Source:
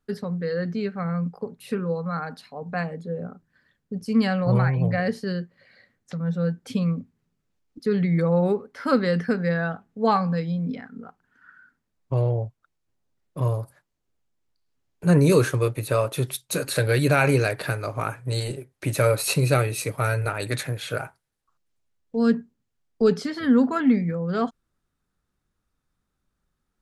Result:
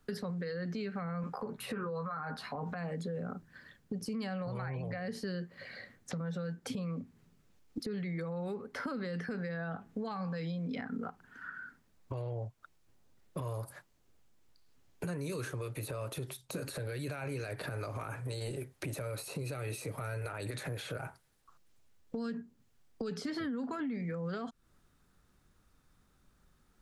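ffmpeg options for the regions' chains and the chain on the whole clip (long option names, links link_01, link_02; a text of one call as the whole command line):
ffmpeg -i in.wav -filter_complex "[0:a]asettb=1/sr,asplit=3[link_01][link_02][link_03];[link_01]atrim=end=1.224[link_04];[link_02]atrim=start=1.22:end=2.75,asetpts=PTS-STARTPTS,afade=type=in:duration=0.004:curve=qsin,afade=type=out:start_time=1.526:duration=0.004:curve=qsin,equalizer=frequency=1300:width=0.8:gain=11,asplit=2[link_05][link_06];[link_06]adelay=14,volume=-4dB[link_07];[link_05][link_07]amix=inputs=2:normalize=0,atrim=end_sample=67473[link_08];[link_03]atrim=start=2.746[link_09];[link_04][link_08]acrossfade=duration=0.004:curve1=hsin:curve2=qsin[link_10];[link_10][link_09]acrossfade=duration=0.004:curve1=qsin:curve2=hsin,acompressor=threshold=-33dB:ratio=4,alimiter=level_in=8.5dB:limit=-24dB:level=0:latency=1:release=53,volume=-8.5dB,acrossover=split=300|1200[link_11][link_12][link_13];[link_11]acompressor=threshold=-49dB:ratio=4[link_14];[link_12]acompressor=threshold=-51dB:ratio=4[link_15];[link_13]acompressor=threshold=-55dB:ratio=4[link_16];[link_14][link_15][link_16]amix=inputs=3:normalize=0,volume=9dB" out.wav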